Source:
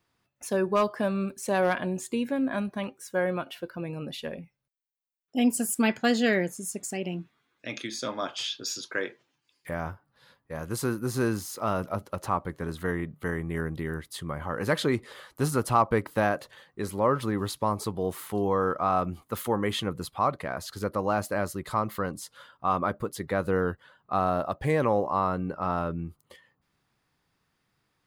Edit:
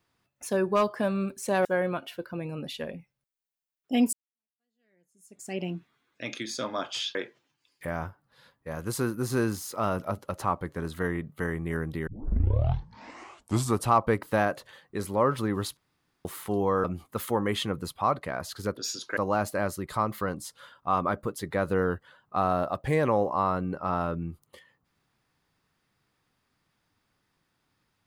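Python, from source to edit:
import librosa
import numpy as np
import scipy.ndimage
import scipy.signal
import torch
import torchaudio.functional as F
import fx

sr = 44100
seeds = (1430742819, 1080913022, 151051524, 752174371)

y = fx.edit(x, sr, fx.cut(start_s=1.65, length_s=1.44),
    fx.fade_in_span(start_s=5.57, length_s=1.43, curve='exp'),
    fx.move(start_s=8.59, length_s=0.4, to_s=20.94),
    fx.tape_start(start_s=13.91, length_s=1.85),
    fx.room_tone_fill(start_s=17.61, length_s=0.48),
    fx.cut(start_s=18.68, length_s=0.33), tone=tone)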